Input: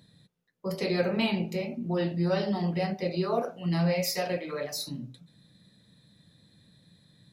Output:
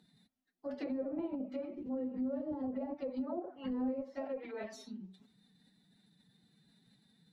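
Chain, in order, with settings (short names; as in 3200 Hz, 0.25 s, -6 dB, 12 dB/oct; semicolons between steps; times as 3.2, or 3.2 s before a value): formant-preserving pitch shift +7 st; treble ducked by the level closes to 520 Hz, closed at -24.5 dBFS; gain -8 dB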